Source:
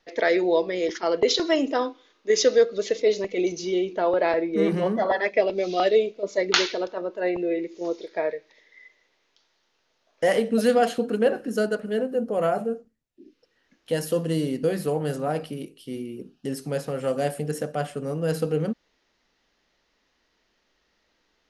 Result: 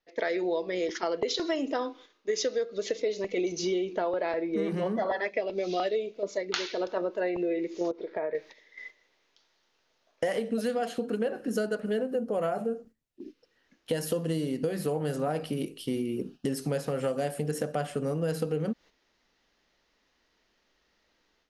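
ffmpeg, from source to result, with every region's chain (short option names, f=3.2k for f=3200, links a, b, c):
-filter_complex "[0:a]asettb=1/sr,asplit=3[a][b][c];[a]atrim=end=7.914[d];[b]atrim=start=7.91:end=8.35,asetpts=PTS-STARTPTS,afade=t=in:d=0.004:c=qsin,afade=t=out:st=0.436:d=0.004:c=qsin,lowpass=1.7k,acompressor=threshold=-34dB:ratio=4:attack=3.2:release=140:knee=1:detection=peak[e];[c]atrim=start=8.346[f];[d][e]acrossfade=d=0.004:c1=hsin:c2=qsin[g];[g][f]acrossfade=d=0.004:c1=qsin:c2=hsin,dynaudnorm=f=140:g=3:m=14dB,agate=range=-8dB:threshold=-37dB:ratio=16:detection=peak,acompressor=threshold=-19dB:ratio=6,volume=-7.5dB"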